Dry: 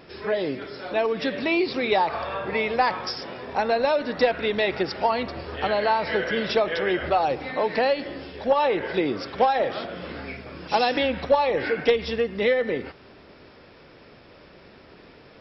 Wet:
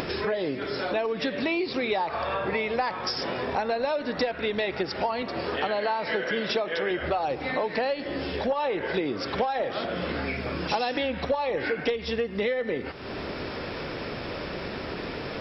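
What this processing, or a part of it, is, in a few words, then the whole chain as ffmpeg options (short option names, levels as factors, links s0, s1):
upward and downward compression: -filter_complex "[0:a]asettb=1/sr,asplit=3[s0][s1][s2];[s0]atrim=end=5.224[s3];[s1]atrim=start=5.22:end=6.91,asetpts=PTS-STARTPTS,afade=t=in:d=0.004:c=qsin,afade=t=out:st=1.686:d=0.004:c=qsin,highpass=150[s4];[s2]atrim=start=6.906[s5];[s3][s4]acrossfade=d=0.004:c1=hsin:c2=qsin[s6];[s6][s5]acrossfade=d=0.004:c1=qsin:c2=hsin,acompressor=mode=upward:threshold=0.0447:ratio=2.5,acompressor=threshold=0.0316:ratio=4,volume=1.68"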